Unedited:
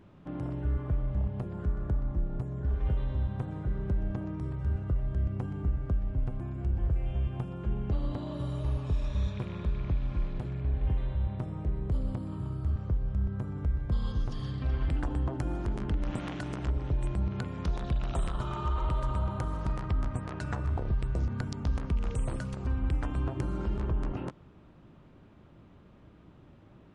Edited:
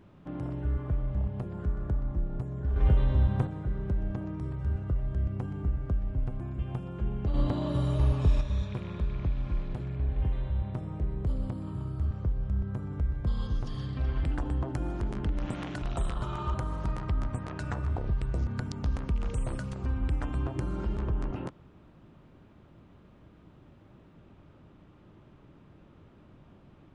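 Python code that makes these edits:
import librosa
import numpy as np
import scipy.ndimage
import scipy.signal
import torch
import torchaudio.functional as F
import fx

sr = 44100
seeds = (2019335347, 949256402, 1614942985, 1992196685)

y = fx.edit(x, sr, fx.clip_gain(start_s=2.76, length_s=0.71, db=6.5),
    fx.cut(start_s=6.59, length_s=0.65),
    fx.clip_gain(start_s=7.99, length_s=1.07, db=6.0),
    fx.cut(start_s=16.47, length_s=1.53),
    fx.cut(start_s=18.72, length_s=0.63), tone=tone)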